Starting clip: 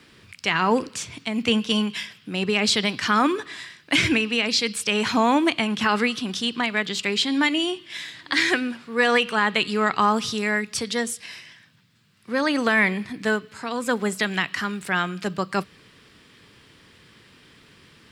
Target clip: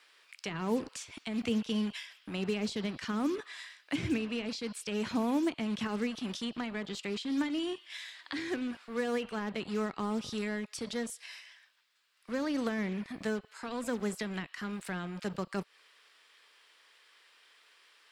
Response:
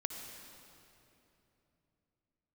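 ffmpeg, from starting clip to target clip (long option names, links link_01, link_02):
-filter_complex "[0:a]acrossover=split=540[link_01][link_02];[link_01]acrusher=bits=5:mix=0:aa=0.5[link_03];[link_02]acompressor=threshold=-31dB:ratio=10[link_04];[link_03][link_04]amix=inputs=2:normalize=0,volume=-8dB"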